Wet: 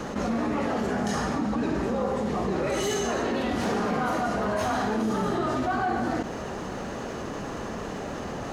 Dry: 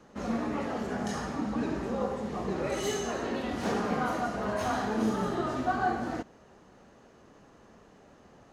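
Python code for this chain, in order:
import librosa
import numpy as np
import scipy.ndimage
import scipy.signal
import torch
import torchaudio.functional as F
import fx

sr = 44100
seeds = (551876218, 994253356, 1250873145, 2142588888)

p1 = np.clip(x, -10.0 ** (-28.0 / 20.0), 10.0 ** (-28.0 / 20.0))
p2 = x + (p1 * 10.0 ** (-6.5 / 20.0))
p3 = fx.env_flatten(p2, sr, amount_pct=70)
y = p3 * 10.0 ** (-2.5 / 20.0)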